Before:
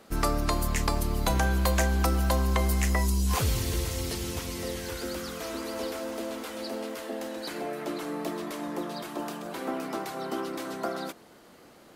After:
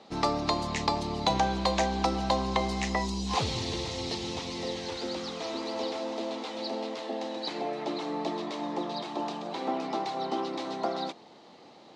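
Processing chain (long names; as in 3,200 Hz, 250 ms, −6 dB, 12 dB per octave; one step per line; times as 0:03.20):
loudspeaker in its box 130–6,000 Hz, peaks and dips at 830 Hz +8 dB, 1,500 Hz −9 dB, 3,900 Hz +7 dB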